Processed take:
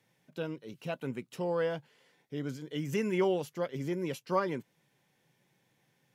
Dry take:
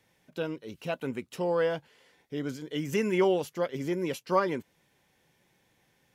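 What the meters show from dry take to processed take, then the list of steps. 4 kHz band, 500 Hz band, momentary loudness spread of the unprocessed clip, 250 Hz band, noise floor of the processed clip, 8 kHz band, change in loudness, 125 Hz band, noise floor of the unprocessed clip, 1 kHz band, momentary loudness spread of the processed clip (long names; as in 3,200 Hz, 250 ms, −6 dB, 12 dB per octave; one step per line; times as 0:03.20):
−4.5 dB, −4.0 dB, 12 LU, −3.0 dB, −74 dBFS, −4.5 dB, −4.0 dB, −0.5 dB, −70 dBFS, −4.5 dB, 11 LU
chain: low shelf with overshoot 100 Hz −7 dB, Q 3
level −4.5 dB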